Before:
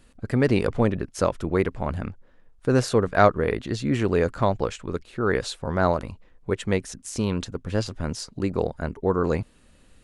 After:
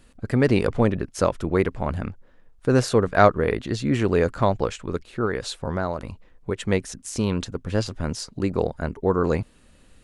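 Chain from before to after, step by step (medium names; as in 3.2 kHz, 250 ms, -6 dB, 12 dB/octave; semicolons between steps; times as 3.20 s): 5.25–6.58 s: compression 6:1, threshold -23 dBFS, peak gain reduction 8.5 dB; trim +1.5 dB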